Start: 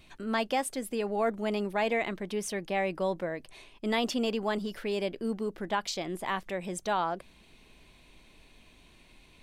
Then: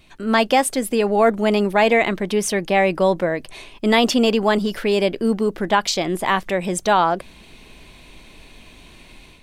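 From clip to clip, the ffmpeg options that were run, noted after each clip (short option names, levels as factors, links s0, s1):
-af "dynaudnorm=f=150:g=3:m=2.82,volume=1.58"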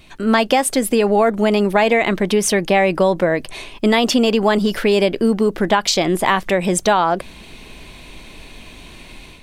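-af "acompressor=threshold=0.141:ratio=6,volume=2"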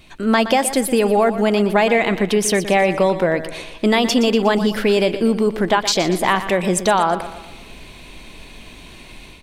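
-af "aecho=1:1:120|240|360|480|600:0.237|0.114|0.0546|0.0262|0.0126,volume=0.891"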